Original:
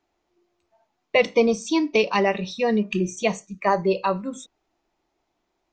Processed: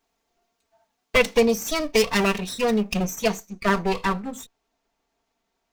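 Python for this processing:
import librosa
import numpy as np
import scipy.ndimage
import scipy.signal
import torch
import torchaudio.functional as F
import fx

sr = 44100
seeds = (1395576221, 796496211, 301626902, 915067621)

y = fx.lower_of_two(x, sr, delay_ms=4.4)
y = fx.high_shelf(y, sr, hz=5700.0, db=fx.steps((0.0, 11.0), (3.14, 5.5)))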